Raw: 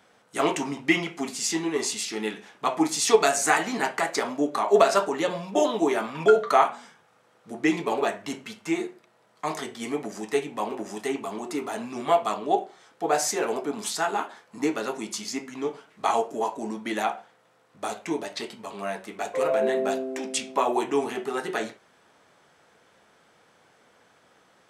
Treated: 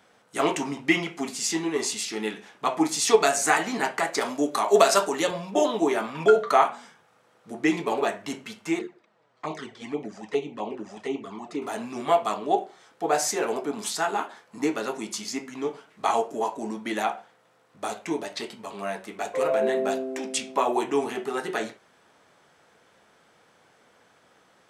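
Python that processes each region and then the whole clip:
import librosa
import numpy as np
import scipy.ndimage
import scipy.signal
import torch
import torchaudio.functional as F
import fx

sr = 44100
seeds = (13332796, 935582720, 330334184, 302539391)

y = fx.chain(x, sr, fx.highpass(hz=110.0, slope=12),
    fx.high_shelf(hz=4100.0, db=10.5), at=(4.21, 5.31))
y = fx.chain(y, sr, fx.env_flanger(rest_ms=8.8, full_db=-25.5),
    fx.air_absorb(metres=97.0), at=(8.79, 11.62))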